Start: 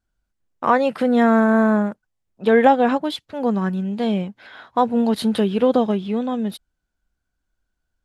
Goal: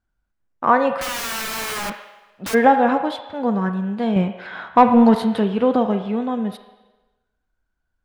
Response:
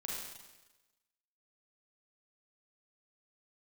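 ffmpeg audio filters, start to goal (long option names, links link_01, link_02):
-filter_complex "[0:a]highshelf=frequency=4800:gain=-10,asplit=3[link_01][link_02][link_03];[link_01]afade=type=out:start_time=0.97:duration=0.02[link_04];[link_02]aeval=exprs='(mod(14.1*val(0)+1,2)-1)/14.1':channel_layout=same,afade=type=in:start_time=0.97:duration=0.02,afade=type=out:start_time=2.53:duration=0.02[link_05];[link_03]afade=type=in:start_time=2.53:duration=0.02[link_06];[link_04][link_05][link_06]amix=inputs=3:normalize=0,asettb=1/sr,asplit=3[link_07][link_08][link_09];[link_07]atrim=end=4.164[link_10];[link_08]atrim=start=4.16:end=5.17,asetpts=PTS-STARTPTS,afade=type=in:duration=0.004:curve=qsin,afade=type=out:start_time=1.006:duration=0.004:curve=qsin,acontrast=77[link_11];[link_09]atrim=start=5.166[link_12];[link_10][link_11]acrossfade=duration=0.004:curve1=hsin:curve2=qsin[link_13];[link_13][link_12]acrossfade=duration=0.004:curve1=qsin:curve2=hsin,asplit=2[link_14][link_15];[link_15]acrossover=split=470 3300:gain=0.0794 1 0.112[link_16][link_17][link_18];[link_16][link_17][link_18]amix=inputs=3:normalize=0[link_19];[1:a]atrim=start_sample=2205[link_20];[link_19][link_20]afir=irnorm=-1:irlink=0,volume=-4.5dB[link_21];[link_14][link_21]amix=inputs=2:normalize=0"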